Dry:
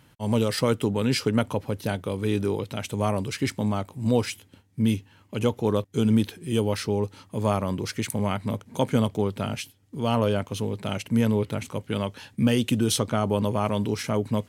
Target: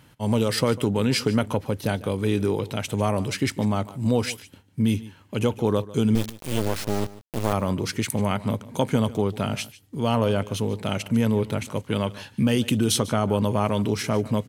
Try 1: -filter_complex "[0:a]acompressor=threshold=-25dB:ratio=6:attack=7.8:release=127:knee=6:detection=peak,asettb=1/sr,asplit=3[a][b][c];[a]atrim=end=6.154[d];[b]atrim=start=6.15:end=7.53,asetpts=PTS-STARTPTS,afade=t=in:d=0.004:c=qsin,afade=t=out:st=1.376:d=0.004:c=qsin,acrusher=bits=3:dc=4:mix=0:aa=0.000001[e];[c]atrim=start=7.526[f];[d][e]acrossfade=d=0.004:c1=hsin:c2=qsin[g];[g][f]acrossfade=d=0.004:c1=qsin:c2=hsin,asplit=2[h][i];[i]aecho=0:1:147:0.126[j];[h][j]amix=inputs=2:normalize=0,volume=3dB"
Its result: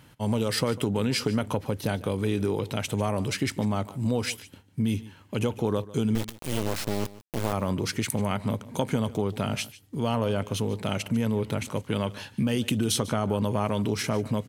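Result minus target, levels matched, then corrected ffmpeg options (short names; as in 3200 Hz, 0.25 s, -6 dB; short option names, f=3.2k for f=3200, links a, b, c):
compressor: peak gain reduction +5.5 dB
-filter_complex "[0:a]acompressor=threshold=-18dB:ratio=6:attack=7.8:release=127:knee=6:detection=peak,asettb=1/sr,asplit=3[a][b][c];[a]atrim=end=6.154[d];[b]atrim=start=6.15:end=7.53,asetpts=PTS-STARTPTS,afade=t=in:d=0.004:c=qsin,afade=t=out:st=1.376:d=0.004:c=qsin,acrusher=bits=3:dc=4:mix=0:aa=0.000001[e];[c]atrim=start=7.526[f];[d][e]acrossfade=d=0.004:c1=hsin:c2=qsin[g];[g][f]acrossfade=d=0.004:c1=qsin:c2=hsin,asplit=2[h][i];[i]aecho=0:1:147:0.126[j];[h][j]amix=inputs=2:normalize=0,volume=3dB"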